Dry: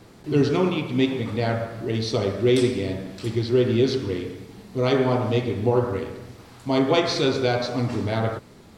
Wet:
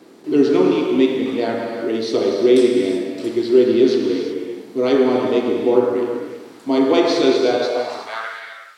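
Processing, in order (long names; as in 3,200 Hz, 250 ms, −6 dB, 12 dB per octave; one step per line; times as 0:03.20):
reverb whose tail is shaped and stops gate 400 ms flat, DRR 2.5 dB
high-pass filter sweep 300 Hz → 1,700 Hz, 0:07.54–0:08.35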